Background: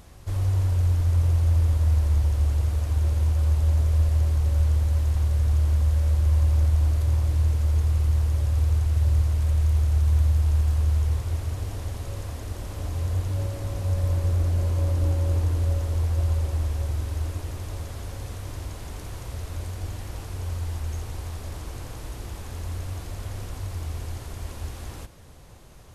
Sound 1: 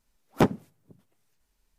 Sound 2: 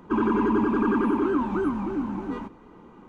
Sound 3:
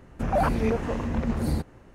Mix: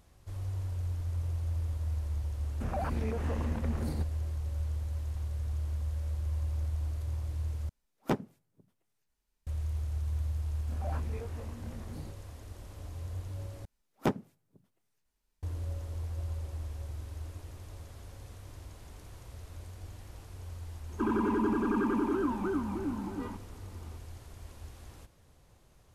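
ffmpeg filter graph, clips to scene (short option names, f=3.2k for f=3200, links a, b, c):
-filter_complex "[3:a]asplit=2[a][b];[1:a]asplit=2[c][d];[0:a]volume=-13dB[e];[a]acompressor=threshold=-24dB:ratio=6:attack=3.2:release=140:knee=1:detection=peak[f];[b]flanger=delay=19.5:depth=6.6:speed=1.3[g];[2:a]bandreject=f=1.1k:w=21[h];[e]asplit=3[i][j][k];[i]atrim=end=7.694[l];[c]atrim=end=1.78,asetpts=PTS-STARTPTS,volume=-9dB[m];[j]atrim=start=9.466:end=13.654[n];[d]atrim=end=1.78,asetpts=PTS-STARTPTS,volume=-8dB[o];[k]atrim=start=15.426[p];[f]atrim=end=1.94,asetpts=PTS-STARTPTS,volume=-6.5dB,afade=t=in:d=0.004:c=hsin,afade=t=out:st=1.936:d=0.004:c=hsin,adelay=2410[q];[g]atrim=end=1.94,asetpts=PTS-STARTPTS,volume=-15.5dB,afade=t=in:d=0.004:c=hsin,afade=t=out:st=1.936:d=0.004:c=hsin,adelay=10490[r];[h]atrim=end=3.08,asetpts=PTS-STARTPTS,volume=-6.5dB,afade=t=in:d=0.004:c=hsin,afade=t=out:st=3.076:d=0.004:c=hsin,adelay=20890[s];[l][m]acrossfade=d=0.004:c1=hsin:c2=hsin[t];[t][n]acrossfade=d=0.004:c1=hsin:c2=hsin[u];[u][o]acrossfade=d=0.004:c1=hsin:c2=hsin[v];[v][p]acrossfade=d=0.004:c1=hsin:c2=hsin[w];[w][q][r][s]amix=inputs=4:normalize=0"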